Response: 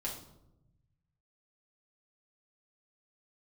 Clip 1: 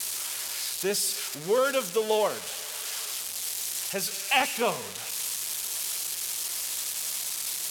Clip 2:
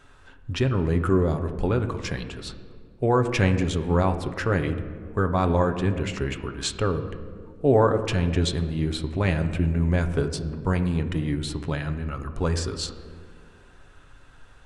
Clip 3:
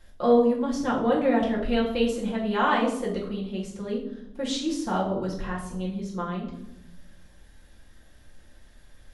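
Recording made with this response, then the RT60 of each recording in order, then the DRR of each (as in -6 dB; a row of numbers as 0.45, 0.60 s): 3; not exponential, 2.1 s, 0.85 s; 14.5, 6.5, -4.5 dB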